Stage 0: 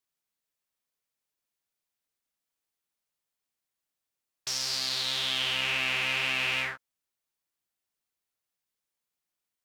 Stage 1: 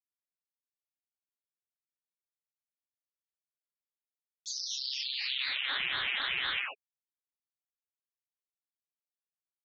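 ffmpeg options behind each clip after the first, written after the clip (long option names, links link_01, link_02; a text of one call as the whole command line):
ffmpeg -i in.wav -af "afftfilt=real='re*gte(hypot(re,im),0.0501)':imag='im*gte(hypot(re,im),0.0501)':win_size=1024:overlap=0.75,acompressor=mode=upward:threshold=-38dB:ratio=2.5,aeval=exprs='val(0)*sin(2*PI*570*n/s+570*0.85/4*sin(2*PI*4*n/s))':channel_layout=same" out.wav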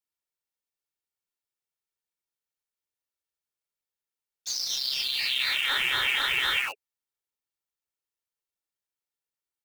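ffmpeg -i in.wav -filter_complex "[0:a]aecho=1:1:2.2:0.38,asplit=2[link_01][link_02];[link_02]acrusher=bits=5:mix=0:aa=0.000001,volume=-4dB[link_03];[link_01][link_03]amix=inputs=2:normalize=0,volume=2dB" out.wav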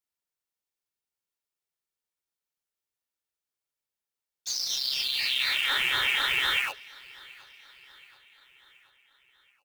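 ffmpeg -i in.wav -af "aecho=1:1:727|1454|2181|2908:0.0708|0.0389|0.0214|0.0118" out.wav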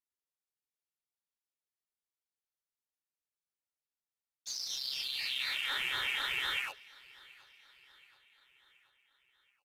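ffmpeg -i in.wav -af "aresample=32000,aresample=44100,volume=-8.5dB" out.wav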